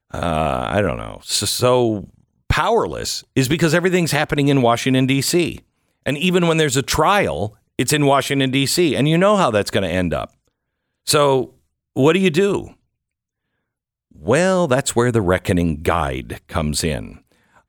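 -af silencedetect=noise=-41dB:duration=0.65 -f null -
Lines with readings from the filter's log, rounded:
silence_start: 10.26
silence_end: 11.07 | silence_duration: 0.81
silence_start: 12.73
silence_end: 14.11 | silence_duration: 1.39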